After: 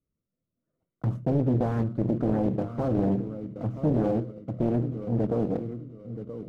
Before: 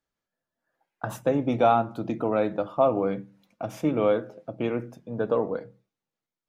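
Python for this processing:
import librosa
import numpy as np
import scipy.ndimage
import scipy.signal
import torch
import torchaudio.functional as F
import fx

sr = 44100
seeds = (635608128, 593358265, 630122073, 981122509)

p1 = fx.block_float(x, sr, bits=3)
p2 = fx.peak_eq(p1, sr, hz=110.0, db=8.0, octaves=2.2)
p3 = fx.over_compress(p2, sr, threshold_db=-25.0, ratio=-1.0)
p4 = p2 + F.gain(torch.from_numpy(p3), -3.0).numpy()
p5 = np.convolve(p4, np.full(53, 1.0 / 53))[:len(p4)]
p6 = fx.echo_feedback(p5, sr, ms=977, feedback_pct=29, wet_db=-11.5)
p7 = fx.doppler_dist(p6, sr, depth_ms=0.85)
y = F.gain(torch.from_numpy(p7), -2.5).numpy()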